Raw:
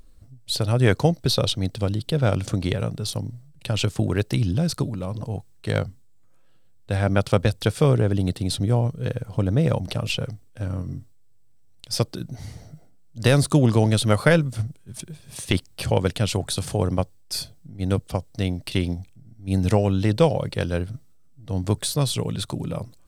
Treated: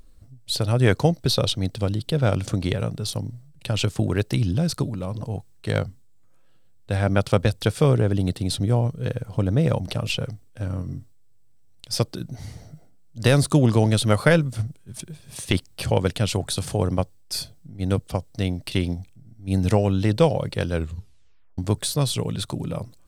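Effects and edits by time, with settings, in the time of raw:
20.74 tape stop 0.84 s

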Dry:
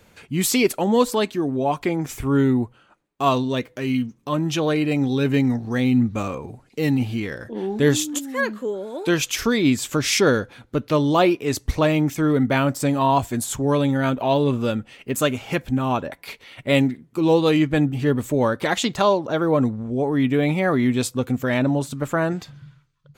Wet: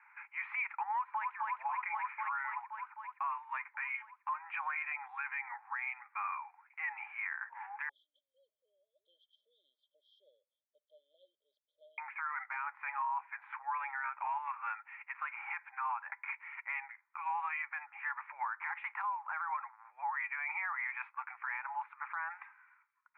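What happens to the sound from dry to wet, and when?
0.95–1.36 echo throw 0.26 s, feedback 75%, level -4 dB
7.89–11.98 brick-wall FIR band-stop 630–3100 Hz
whole clip: Chebyshev band-pass 840–2400 Hz, order 5; compressor 6:1, threshold -30 dBFS; limiter -28.5 dBFS

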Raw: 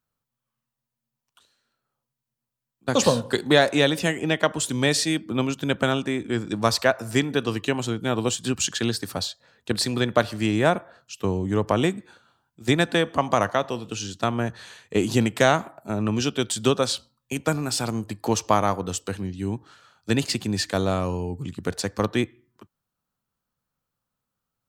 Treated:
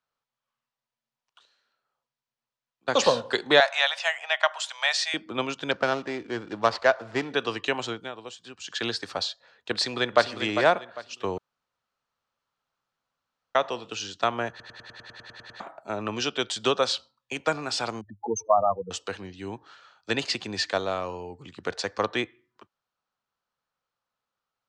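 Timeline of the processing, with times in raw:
3.6–5.14 elliptic high-pass 660 Hz, stop band 50 dB
5.71–7.34 median filter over 15 samples
7.92–8.84 dip -13.5 dB, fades 0.20 s
9.72–10.33 echo throw 0.4 s, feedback 30%, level -8.5 dB
11.38–13.55 room tone
14.5 stutter in place 0.10 s, 11 plays
18.01–18.91 spectral contrast raised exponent 4
20.78–21.54 gain -3 dB
whole clip: LPF 8400 Hz 12 dB/oct; three-band isolator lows -15 dB, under 420 Hz, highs -22 dB, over 6400 Hz; gain +1.5 dB

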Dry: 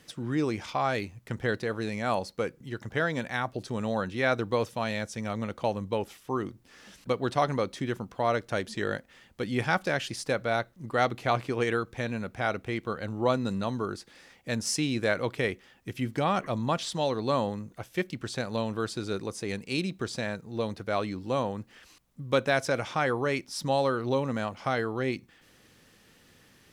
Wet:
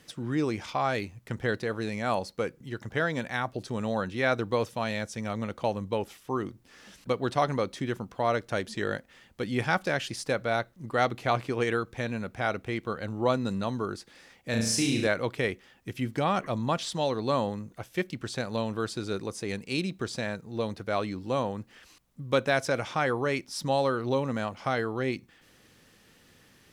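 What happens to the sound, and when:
14.5–15.07 flutter echo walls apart 6.1 m, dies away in 0.67 s

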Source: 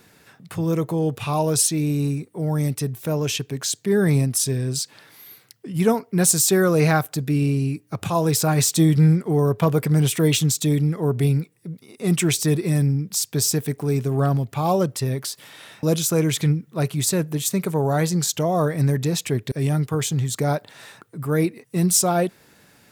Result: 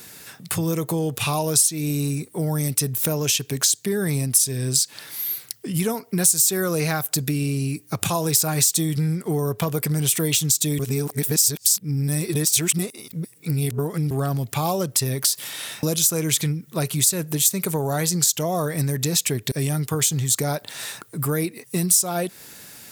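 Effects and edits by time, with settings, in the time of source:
10.79–14.11 reverse
whole clip: high shelf 2700 Hz +8 dB; compressor 6:1, threshold -25 dBFS; high shelf 5500 Hz +7 dB; gain +4 dB

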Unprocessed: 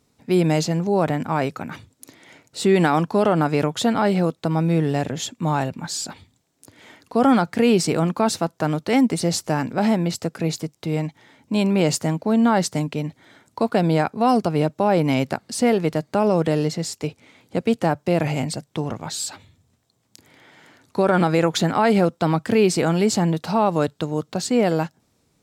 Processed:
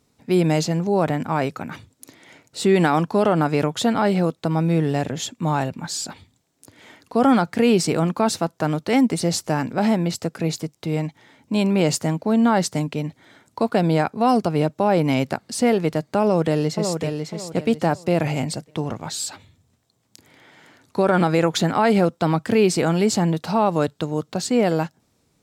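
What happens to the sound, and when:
16.22–17.05 echo throw 0.55 s, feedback 30%, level -6 dB

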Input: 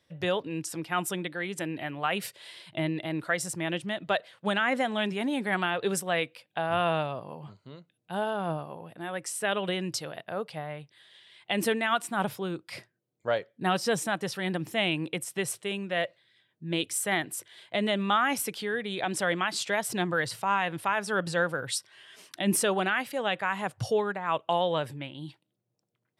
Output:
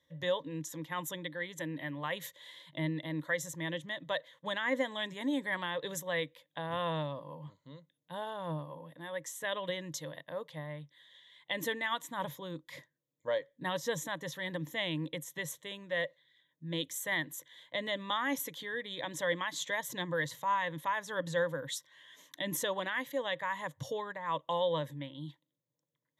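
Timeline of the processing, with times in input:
4.87–5.47 bell 7900 Hz +10 dB 0.21 oct
whole clip: ripple EQ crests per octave 1.1, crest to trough 14 dB; gain -8.5 dB

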